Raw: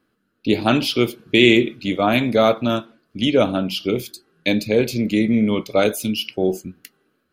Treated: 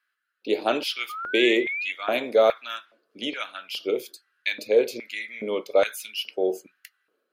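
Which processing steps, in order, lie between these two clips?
painted sound rise, 1.09–1.92, 1200–2700 Hz -27 dBFS; LFO high-pass square 1.2 Hz 470–1700 Hz; gain -7.5 dB

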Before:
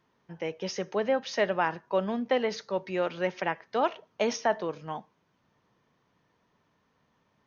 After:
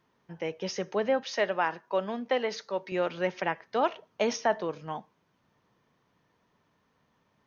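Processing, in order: 1.23–2.92 HPF 340 Hz 6 dB/oct

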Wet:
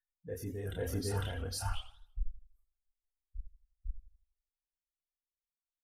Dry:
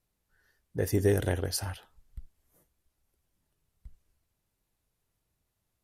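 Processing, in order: per-bin expansion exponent 2; LPF 12000 Hz; low shelf 120 Hz +5 dB; comb 4.3 ms, depth 46%; reverse; compressor 5:1, threshold -39 dBFS, peak gain reduction 16.5 dB; reverse; limiter -37.5 dBFS, peak gain reduction 11.5 dB; chorus voices 6, 0.9 Hz, delay 29 ms, depth 2.2 ms; reverse echo 0.502 s -3.5 dB; warbling echo 83 ms, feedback 39%, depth 177 cents, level -14 dB; gain +11.5 dB

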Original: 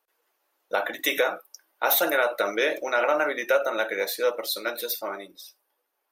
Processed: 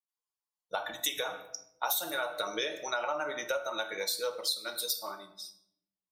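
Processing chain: per-bin expansion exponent 1.5; graphic EQ 125/250/500/1000/2000/4000/8000 Hz +12/-7/-5/+4/-9/+8/+9 dB; reverb RT60 0.75 s, pre-delay 7 ms, DRR 8.5 dB; compressor 6:1, threshold -29 dBFS, peak gain reduction 13 dB

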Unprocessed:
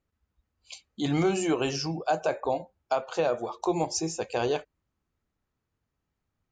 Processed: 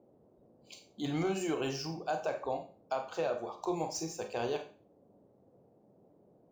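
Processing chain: median filter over 3 samples; band noise 100–620 Hz -57 dBFS; Schroeder reverb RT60 0.36 s, combs from 30 ms, DRR 6 dB; gain -8 dB

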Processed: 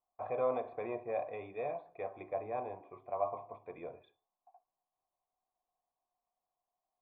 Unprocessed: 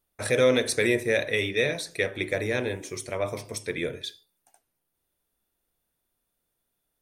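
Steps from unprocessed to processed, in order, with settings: overloaded stage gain 13 dB; vocal tract filter a; gain +7.5 dB

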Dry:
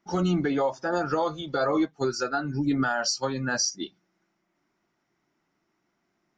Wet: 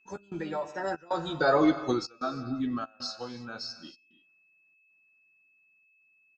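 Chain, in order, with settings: Doppler pass-by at 1.59, 33 m/s, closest 11 m; non-linear reverb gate 0.35 s flat, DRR 11.5 dB; step gate "x.xxxx.xxxxx" 95 bpm -24 dB; whine 2600 Hz -67 dBFS; doubler 12 ms -8 dB; gain +2 dB

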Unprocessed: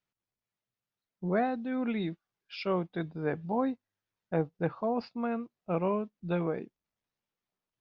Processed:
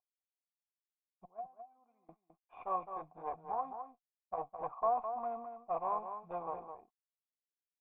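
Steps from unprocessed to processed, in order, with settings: CVSD 32 kbps; 1.25–2.09 gate -23 dBFS, range -28 dB; low shelf 500 Hz -6 dB; 3.5–4.38 compressor 1.5:1, threshold -37 dBFS, peak gain reduction 4 dB; added harmonics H 2 -11 dB, 3 -15 dB, 5 -26 dB, 6 -21 dB, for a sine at -19.5 dBFS; vocal tract filter a; outdoor echo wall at 36 m, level -8 dB; gain +13.5 dB

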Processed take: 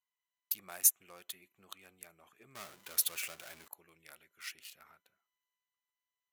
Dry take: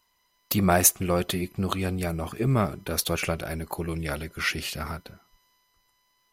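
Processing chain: Wiener smoothing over 9 samples; 2.55–3.68 power-law curve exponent 0.5; differentiator; gain -8.5 dB

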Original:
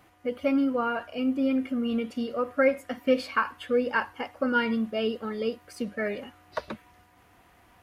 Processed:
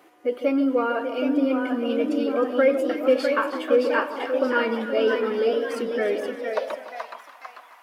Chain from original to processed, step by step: in parallel at -2 dB: limiter -23.5 dBFS, peak gain reduction 12 dB; on the sum: echo with dull and thin repeats by turns 0.156 s, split 1100 Hz, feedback 67%, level -8.5 dB; echoes that change speed 0.797 s, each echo +1 st, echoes 3, each echo -6 dB; high-pass sweep 360 Hz -> 1000 Hz, 6.34–7.19; gain -2.5 dB

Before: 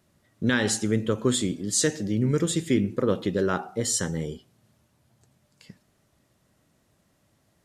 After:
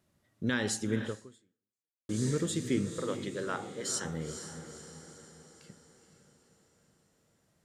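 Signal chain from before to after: 2.98–4.05 weighting filter A; diffused feedback echo 0.476 s, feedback 52%, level -9.5 dB; 1.05–2.09 fade out exponential; gain -7.5 dB

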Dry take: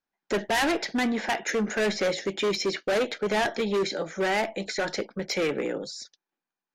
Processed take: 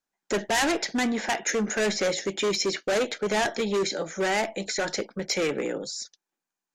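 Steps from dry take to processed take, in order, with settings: bell 7000 Hz +8 dB 0.71 oct

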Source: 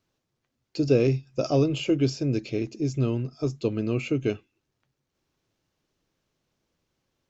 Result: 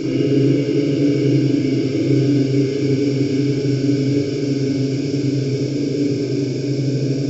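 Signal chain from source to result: bit-crush 12-bit; Paulstretch 43×, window 0.50 s, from 2.01; spring tank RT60 1.3 s, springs 38/56 ms, chirp 80 ms, DRR -6.5 dB

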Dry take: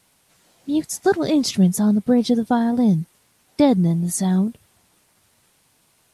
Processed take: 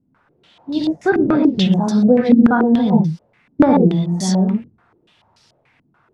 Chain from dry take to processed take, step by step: non-linear reverb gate 0.14 s rising, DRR -2 dB; stepped low-pass 6.9 Hz 260–5000 Hz; gain -1 dB

